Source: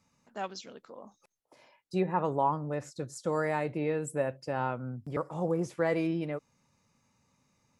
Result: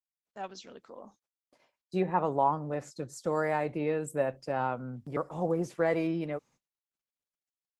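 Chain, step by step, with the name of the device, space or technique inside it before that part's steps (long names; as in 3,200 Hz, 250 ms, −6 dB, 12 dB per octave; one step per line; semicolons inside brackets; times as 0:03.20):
dynamic equaliser 730 Hz, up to +4 dB, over −44 dBFS, Q 4.4
video call (high-pass filter 130 Hz 12 dB per octave; automatic gain control gain up to 8 dB; noise gate −50 dBFS, range −32 dB; level −7.5 dB; Opus 16 kbit/s 48,000 Hz)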